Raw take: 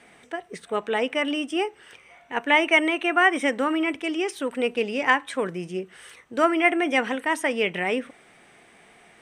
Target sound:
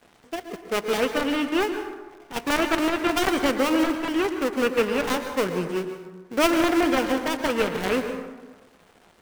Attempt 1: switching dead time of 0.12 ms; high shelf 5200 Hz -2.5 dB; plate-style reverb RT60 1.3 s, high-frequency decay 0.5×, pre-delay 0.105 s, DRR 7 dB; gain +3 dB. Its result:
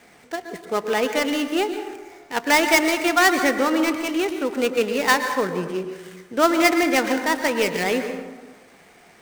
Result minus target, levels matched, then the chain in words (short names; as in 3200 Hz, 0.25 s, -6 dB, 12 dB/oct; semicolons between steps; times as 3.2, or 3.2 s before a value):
switching dead time: distortion -9 dB
switching dead time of 0.32 ms; high shelf 5200 Hz -2.5 dB; plate-style reverb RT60 1.3 s, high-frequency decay 0.5×, pre-delay 0.105 s, DRR 7 dB; gain +3 dB